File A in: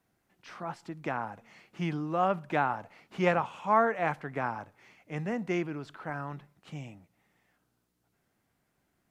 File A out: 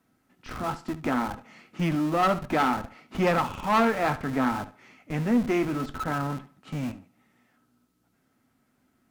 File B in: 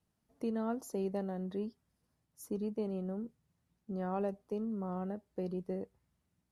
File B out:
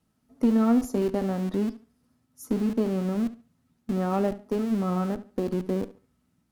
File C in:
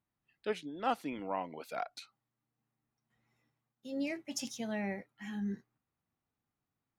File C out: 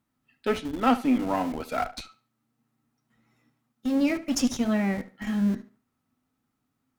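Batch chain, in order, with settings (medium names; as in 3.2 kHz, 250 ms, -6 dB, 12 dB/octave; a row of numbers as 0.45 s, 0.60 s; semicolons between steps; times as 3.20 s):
flange 0.62 Hz, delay 5.8 ms, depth 3.4 ms, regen -70%; small resonant body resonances 250/1300 Hz, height 14 dB, ringing for 100 ms; in parallel at -10 dB: Schmitt trigger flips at -43.5 dBFS; on the sum: valve stage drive 25 dB, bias 0.35; tape echo 72 ms, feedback 28%, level -15 dB, low-pass 5.8 kHz; normalise loudness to -27 LUFS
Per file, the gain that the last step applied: +9.0 dB, +12.5 dB, +13.0 dB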